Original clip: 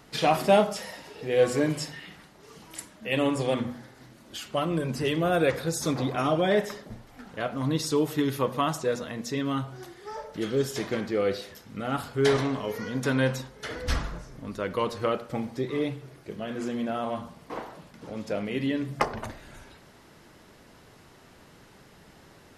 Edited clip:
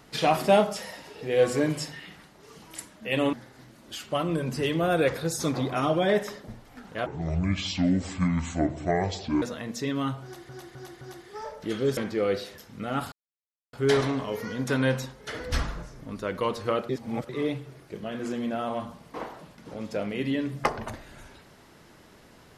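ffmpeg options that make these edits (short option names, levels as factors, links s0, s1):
-filter_complex "[0:a]asplit=11[s0][s1][s2][s3][s4][s5][s6][s7][s8][s9][s10];[s0]atrim=end=3.332[s11];[s1]atrim=start=3.748:end=7.484[s12];[s2]atrim=start=7.48:end=8.92,asetpts=PTS-STARTPTS,asetrate=26901,aresample=44100[s13];[s3]atrim=start=8.916:end=9.992[s14];[s4]atrim=start=9.728:end=9.992[s15];[s5]atrim=start=9.728:end=9.992[s16];[s6]atrim=start=9.728:end=10.692[s17];[s7]atrim=start=10.938:end=12.09,asetpts=PTS-STARTPTS,afade=t=out:st=1.148:d=0.004:c=hsin,apad=pad_dur=0.61[s18];[s8]atrim=start=12.09:end=15.252,asetpts=PTS-STARTPTS,afade=t=in:d=0.004:c=hsin[s19];[s9]atrim=start=15.248:end=15.652,asetpts=PTS-STARTPTS,areverse[s20];[s10]atrim=start=15.648[s21];[s11][s12]acrossfade=d=0.004:c1=hsin:c2=hsin[s22];[s22][s13]acrossfade=d=0.004:c1=hsin:c2=hsin[s23];[s23][s14]acrossfade=d=0.004:c1=hsin:c2=hsin[s24];[s24][s15]acrossfade=d=0.004:c1=hsin:c2=hsin[s25];[s25][s16]acrossfade=d=0.004:c1=hsin:c2=hsin[s26];[s26][s17]acrossfade=d=0.004:c1=hsin:c2=hsin[s27];[s18][s19]concat=n=2:v=0:a=1[s28];[s27][s28]acrossfade=d=0.004:c1=hsin:c2=hsin[s29];[s29][s20]acrossfade=d=0.004:c1=hsin:c2=hsin[s30];[s30][s21]acrossfade=d=0.004:c1=hsin:c2=hsin"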